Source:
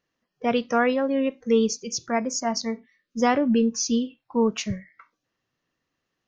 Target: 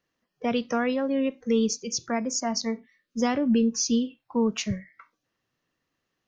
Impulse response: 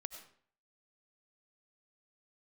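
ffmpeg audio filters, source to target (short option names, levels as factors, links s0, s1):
-filter_complex "[0:a]acrossover=split=290|3000[s0][s1][s2];[s1]acompressor=threshold=0.0398:ratio=2.5[s3];[s0][s3][s2]amix=inputs=3:normalize=0"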